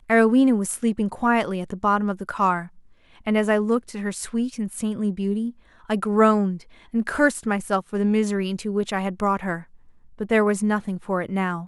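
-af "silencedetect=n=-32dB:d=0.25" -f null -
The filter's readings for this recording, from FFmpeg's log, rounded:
silence_start: 2.66
silence_end: 3.26 | silence_duration: 0.61
silence_start: 5.50
silence_end: 5.90 | silence_duration: 0.39
silence_start: 6.57
silence_end: 6.94 | silence_duration: 0.37
silence_start: 9.61
silence_end: 10.20 | silence_duration: 0.59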